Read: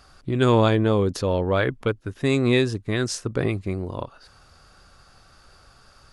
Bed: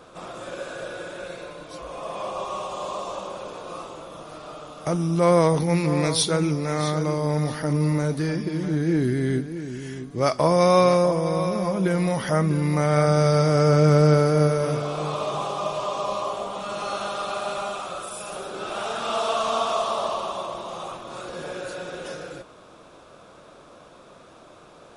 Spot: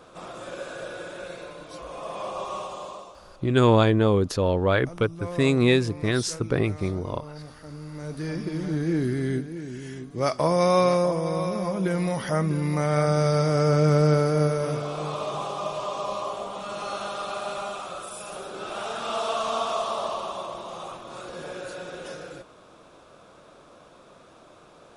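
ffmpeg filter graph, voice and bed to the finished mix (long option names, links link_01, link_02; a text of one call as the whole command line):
ffmpeg -i stem1.wav -i stem2.wav -filter_complex "[0:a]adelay=3150,volume=0dB[link_01];[1:a]volume=12.5dB,afade=type=out:start_time=2.57:duration=0.6:silence=0.16788,afade=type=in:start_time=7.92:duration=0.53:silence=0.188365[link_02];[link_01][link_02]amix=inputs=2:normalize=0" out.wav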